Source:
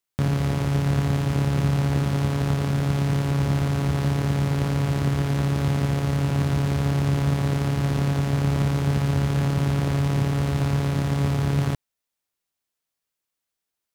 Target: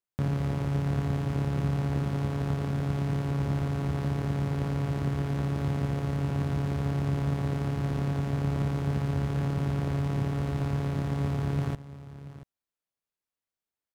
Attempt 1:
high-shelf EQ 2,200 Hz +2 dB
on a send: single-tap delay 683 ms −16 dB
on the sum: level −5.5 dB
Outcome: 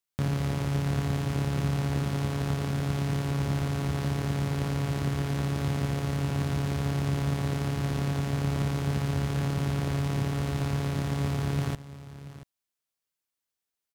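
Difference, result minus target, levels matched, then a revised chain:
4,000 Hz band +6.5 dB
high-shelf EQ 2,200 Hz −7.5 dB
on a send: single-tap delay 683 ms −16 dB
on the sum: level −5.5 dB

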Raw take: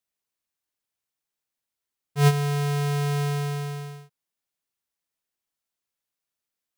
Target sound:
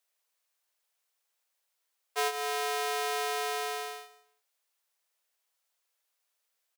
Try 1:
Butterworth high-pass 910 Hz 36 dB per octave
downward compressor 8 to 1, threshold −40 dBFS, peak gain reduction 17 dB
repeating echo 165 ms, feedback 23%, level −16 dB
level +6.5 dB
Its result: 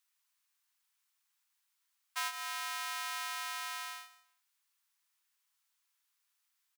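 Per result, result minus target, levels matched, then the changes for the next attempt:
500 Hz band −18.0 dB; downward compressor: peak gain reduction +4 dB
change: Butterworth high-pass 450 Hz 36 dB per octave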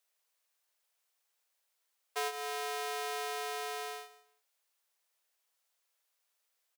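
downward compressor: peak gain reduction +5.5 dB
change: downward compressor 8 to 1, threshold −33.5 dBFS, peak gain reduction 13 dB

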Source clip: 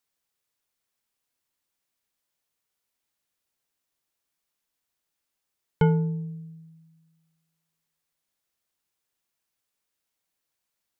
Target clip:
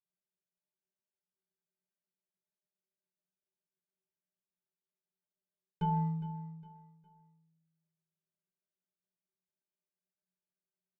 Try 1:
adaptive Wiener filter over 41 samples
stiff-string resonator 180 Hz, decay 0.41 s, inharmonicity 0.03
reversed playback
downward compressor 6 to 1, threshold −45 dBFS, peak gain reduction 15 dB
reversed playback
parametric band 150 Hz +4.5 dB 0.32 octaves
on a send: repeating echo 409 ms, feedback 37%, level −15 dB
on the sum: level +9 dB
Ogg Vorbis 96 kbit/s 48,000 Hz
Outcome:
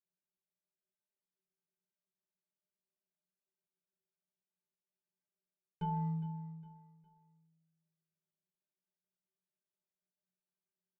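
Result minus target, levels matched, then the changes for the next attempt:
downward compressor: peak gain reduction +5 dB
change: downward compressor 6 to 1, threshold −39 dBFS, peak gain reduction 10 dB

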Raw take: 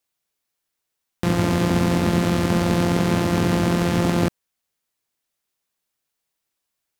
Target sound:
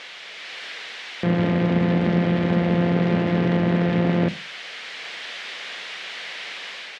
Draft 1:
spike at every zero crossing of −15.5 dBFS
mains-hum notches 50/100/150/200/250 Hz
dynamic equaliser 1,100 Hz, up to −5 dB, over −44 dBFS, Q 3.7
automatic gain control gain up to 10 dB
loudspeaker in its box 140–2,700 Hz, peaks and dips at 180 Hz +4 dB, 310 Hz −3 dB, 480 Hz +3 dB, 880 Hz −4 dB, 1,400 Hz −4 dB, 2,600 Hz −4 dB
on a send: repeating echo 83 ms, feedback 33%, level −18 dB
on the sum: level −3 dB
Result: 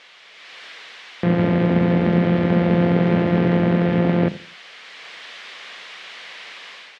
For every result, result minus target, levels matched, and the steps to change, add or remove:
echo 30 ms late; spike at every zero crossing: distortion −9 dB
change: repeating echo 53 ms, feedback 33%, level −18 dB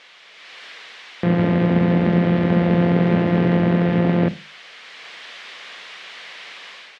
spike at every zero crossing: distortion −9 dB
change: spike at every zero crossing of −6.5 dBFS

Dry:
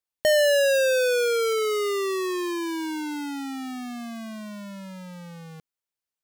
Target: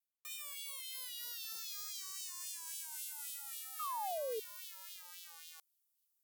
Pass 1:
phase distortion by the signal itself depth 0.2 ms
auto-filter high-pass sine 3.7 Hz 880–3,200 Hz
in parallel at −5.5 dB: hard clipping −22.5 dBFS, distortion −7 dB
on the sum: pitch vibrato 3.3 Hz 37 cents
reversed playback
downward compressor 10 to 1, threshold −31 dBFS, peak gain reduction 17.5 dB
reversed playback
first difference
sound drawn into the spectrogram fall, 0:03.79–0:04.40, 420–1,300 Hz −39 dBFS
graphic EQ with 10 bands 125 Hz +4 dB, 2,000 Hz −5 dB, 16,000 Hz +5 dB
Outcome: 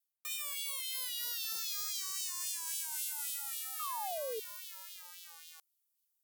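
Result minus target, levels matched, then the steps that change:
downward compressor: peak gain reduction −6.5 dB
change: downward compressor 10 to 1, threshold −38.5 dBFS, peak gain reduction 24.5 dB

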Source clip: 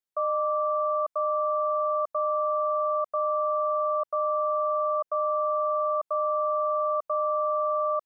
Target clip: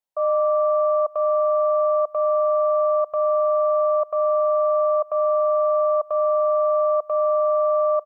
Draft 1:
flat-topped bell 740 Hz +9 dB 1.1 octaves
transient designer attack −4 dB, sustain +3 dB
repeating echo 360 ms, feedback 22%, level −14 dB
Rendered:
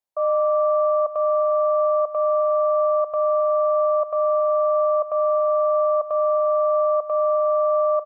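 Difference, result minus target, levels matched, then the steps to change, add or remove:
echo-to-direct +11 dB
change: repeating echo 360 ms, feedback 22%, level −25 dB

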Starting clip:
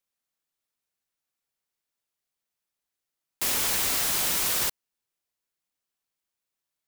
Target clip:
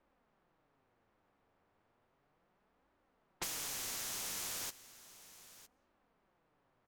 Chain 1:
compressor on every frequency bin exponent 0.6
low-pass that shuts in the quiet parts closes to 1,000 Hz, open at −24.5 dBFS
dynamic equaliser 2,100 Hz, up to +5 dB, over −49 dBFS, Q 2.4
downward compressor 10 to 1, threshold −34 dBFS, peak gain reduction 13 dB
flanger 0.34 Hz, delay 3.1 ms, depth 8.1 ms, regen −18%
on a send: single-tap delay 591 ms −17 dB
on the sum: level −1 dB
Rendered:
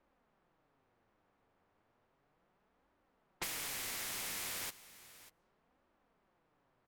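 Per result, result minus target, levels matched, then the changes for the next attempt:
echo 369 ms early; 2,000 Hz band +4.0 dB
change: single-tap delay 960 ms −17 dB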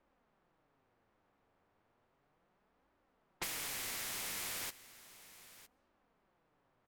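2,000 Hz band +4.0 dB
change: dynamic equaliser 6,300 Hz, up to +5 dB, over −49 dBFS, Q 2.4

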